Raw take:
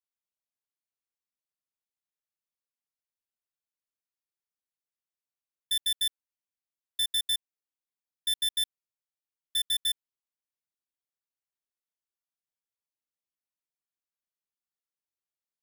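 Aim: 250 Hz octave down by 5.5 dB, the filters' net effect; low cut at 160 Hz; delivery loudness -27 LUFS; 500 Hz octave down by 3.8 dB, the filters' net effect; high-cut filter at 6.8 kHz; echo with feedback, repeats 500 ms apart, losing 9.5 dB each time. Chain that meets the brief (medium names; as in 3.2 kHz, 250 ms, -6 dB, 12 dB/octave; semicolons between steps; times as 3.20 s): high-pass 160 Hz; low-pass 6.8 kHz; peaking EQ 250 Hz -4.5 dB; peaking EQ 500 Hz -3.5 dB; feedback delay 500 ms, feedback 33%, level -9.5 dB; trim +4.5 dB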